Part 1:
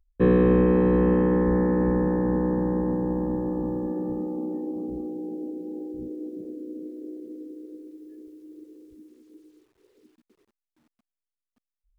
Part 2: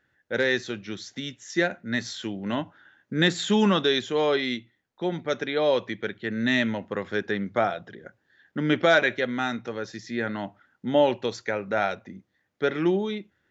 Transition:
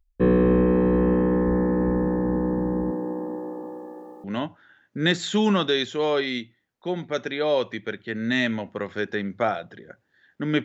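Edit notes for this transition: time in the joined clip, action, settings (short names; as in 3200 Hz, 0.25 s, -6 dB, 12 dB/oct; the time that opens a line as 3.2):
part 1
2.9–4.24 HPF 230 Hz -> 860 Hz
4.24 switch to part 2 from 2.4 s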